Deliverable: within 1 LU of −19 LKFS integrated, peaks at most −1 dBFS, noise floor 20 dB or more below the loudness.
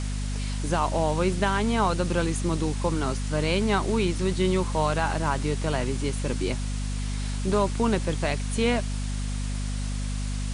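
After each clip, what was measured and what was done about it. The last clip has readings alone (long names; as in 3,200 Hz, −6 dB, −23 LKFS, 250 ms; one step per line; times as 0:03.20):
mains hum 50 Hz; hum harmonics up to 250 Hz; level of the hum −26 dBFS; background noise floor −29 dBFS; target noise floor −47 dBFS; integrated loudness −26.5 LKFS; sample peak −11.0 dBFS; target loudness −19.0 LKFS
→ mains-hum notches 50/100/150/200/250 Hz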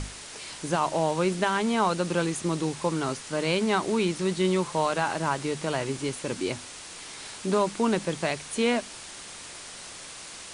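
mains hum none found; background noise floor −43 dBFS; target noise floor −47 dBFS
→ broadband denoise 6 dB, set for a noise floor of −43 dBFS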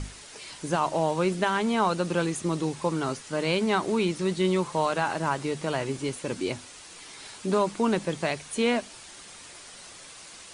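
background noise floor −46 dBFS; target noise floor −48 dBFS
→ broadband denoise 6 dB, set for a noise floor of −46 dBFS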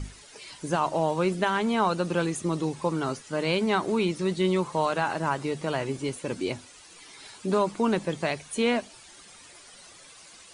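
background noise floor −50 dBFS; integrated loudness −27.5 LKFS; sample peak −12.5 dBFS; target loudness −19.0 LKFS
→ level +8.5 dB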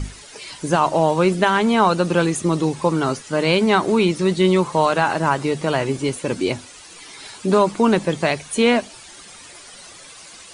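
integrated loudness −19.0 LKFS; sample peak −4.0 dBFS; background noise floor −42 dBFS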